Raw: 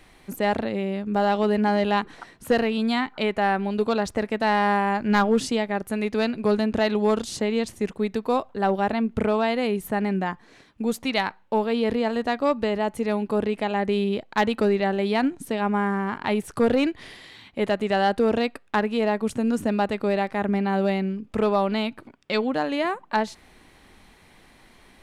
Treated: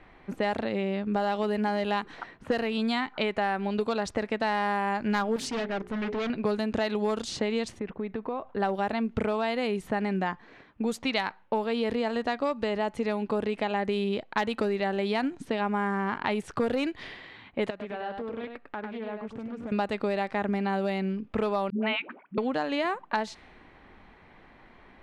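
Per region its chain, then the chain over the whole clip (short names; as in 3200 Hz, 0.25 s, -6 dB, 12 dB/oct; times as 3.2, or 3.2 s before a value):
5.36–6.3 notches 60/120/180/240/300/360/420 Hz + hard clip -28 dBFS + Doppler distortion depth 0.3 ms
7.79–8.47 compressor 10:1, threshold -27 dBFS + air absorption 270 m + mismatched tape noise reduction decoder only
17.7–19.72 compressor 2.5:1, threshold -41 dBFS + echo 0.1 s -5.5 dB + Doppler distortion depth 0.23 ms
21.7–22.38 Chebyshev band-pass 190–2800 Hz, order 3 + dynamic EQ 2300 Hz, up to +7 dB, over -42 dBFS, Q 0.76 + dispersion highs, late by 0.125 s, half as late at 440 Hz
whole clip: low-pass opened by the level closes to 1800 Hz, open at -17 dBFS; low shelf 440 Hz -4 dB; compressor 5:1, threshold -27 dBFS; gain +2.5 dB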